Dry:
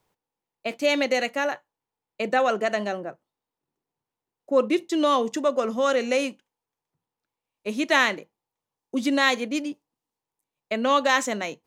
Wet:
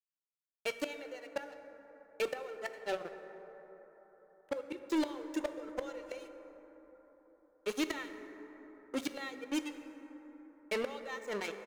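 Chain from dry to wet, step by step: reverb removal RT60 1.7 s; comb 2.2 ms, depth 70%; harmonic-percussive split percussive -6 dB; crossover distortion -38.5 dBFS; bass shelf 380 Hz -5.5 dB; inverted gate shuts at -20 dBFS, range -26 dB; hard clipper -31 dBFS, distortion -9 dB; plate-style reverb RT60 4.4 s, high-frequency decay 0.3×, DRR 8 dB; trim +3 dB

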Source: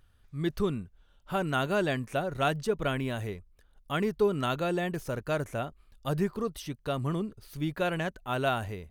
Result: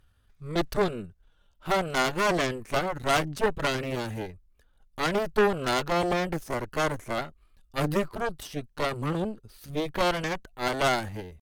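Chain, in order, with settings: Chebyshev shaper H 3 -24 dB, 6 -10 dB, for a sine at -15 dBFS; tempo 0.78×; trim +2 dB

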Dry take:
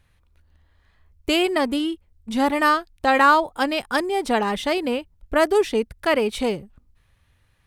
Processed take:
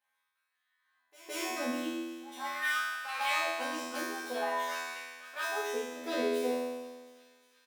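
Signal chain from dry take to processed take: self-modulated delay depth 0.23 ms; treble shelf 11 kHz +11.5 dB; comb 3.9 ms, depth 75%; pre-echo 164 ms -18 dB; simulated room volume 220 m³, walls furnished, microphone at 1.3 m; saturation -6.5 dBFS, distortion -19 dB; LFO high-pass sine 0.45 Hz 330–1500 Hz; feedback comb 83 Hz, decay 1.4 s, harmonics all, mix 100%; feedback echo behind a high-pass 359 ms, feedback 72%, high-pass 2 kHz, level -20 dB

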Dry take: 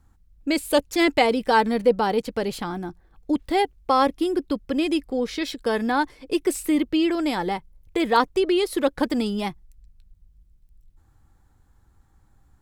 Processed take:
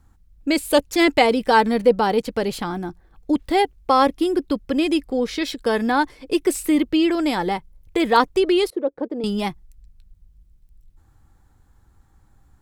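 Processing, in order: 8.70–9.24 s: band-pass filter 440 Hz, Q 2.4; trim +3 dB

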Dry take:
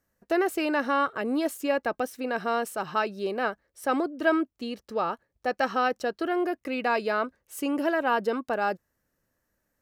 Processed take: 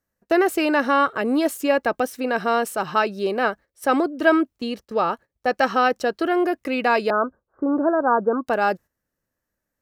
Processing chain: gate -45 dBFS, range -11 dB; 7.10–8.47 s: steep low-pass 1.5 kHz 72 dB/octave; trim +6.5 dB

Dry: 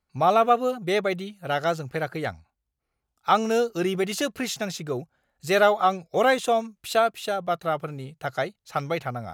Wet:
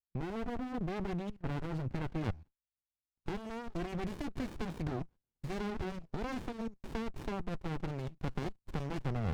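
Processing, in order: gate with hold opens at -43 dBFS; treble shelf 2.3 kHz -7.5 dB, from 2.21 s +3.5 dB, from 3.80 s +10 dB; compression 6:1, threshold -20 dBFS, peak gain reduction 9 dB; peak limiter -21 dBFS, peak gain reduction 10.5 dB; level held to a coarse grid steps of 19 dB; distance through air 190 m; sliding maximum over 65 samples; trim +5.5 dB

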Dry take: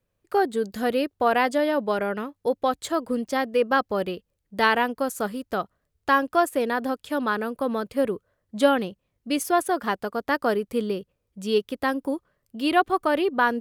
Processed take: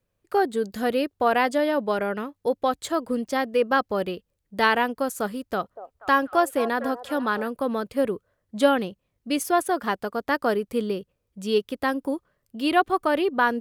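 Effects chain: 5.31–7.48 s: repeats whose band climbs or falls 241 ms, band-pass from 640 Hz, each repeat 0.7 oct, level -10.5 dB

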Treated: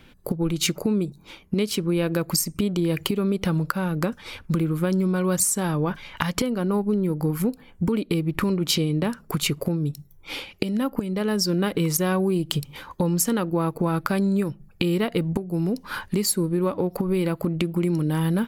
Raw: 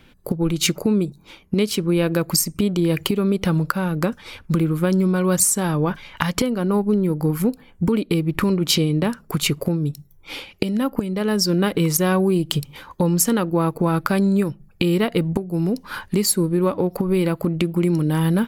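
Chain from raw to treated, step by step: compression 1.5:1, threshold -26 dBFS, peak gain reduction 5 dB

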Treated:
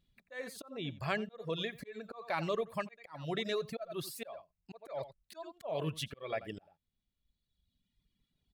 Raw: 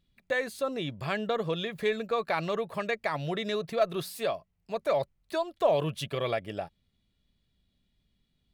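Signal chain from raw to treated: echo from a far wall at 15 m, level -10 dB; slow attack 312 ms; reverb removal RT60 1.7 s; trim -2.5 dB

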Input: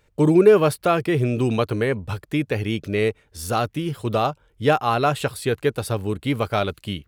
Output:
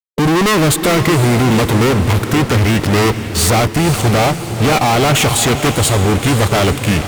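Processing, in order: fuzz box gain 41 dB, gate -43 dBFS; formant shift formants -3 st; echo that smears into a reverb 497 ms, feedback 50%, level -9.5 dB; trim +2 dB

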